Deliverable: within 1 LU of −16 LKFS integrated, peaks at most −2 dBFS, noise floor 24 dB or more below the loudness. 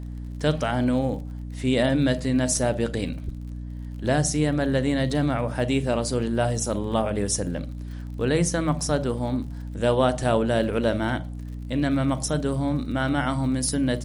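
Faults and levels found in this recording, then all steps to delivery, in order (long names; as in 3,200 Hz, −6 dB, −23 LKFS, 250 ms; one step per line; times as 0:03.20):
crackle rate 53 per second; mains hum 60 Hz; hum harmonics up to 300 Hz; level of the hum −31 dBFS; integrated loudness −24.5 LKFS; sample peak −7.5 dBFS; target loudness −16.0 LKFS
→ click removal
hum removal 60 Hz, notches 5
level +8.5 dB
brickwall limiter −2 dBFS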